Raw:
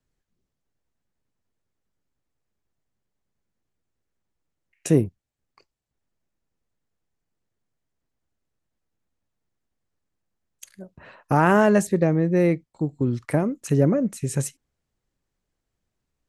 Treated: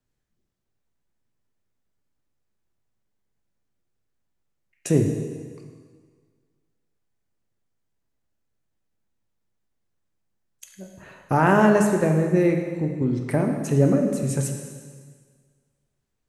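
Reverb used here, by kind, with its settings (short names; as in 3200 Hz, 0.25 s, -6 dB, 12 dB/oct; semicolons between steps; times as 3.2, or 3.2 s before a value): plate-style reverb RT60 1.7 s, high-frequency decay 0.95×, DRR 2.5 dB; gain -1.5 dB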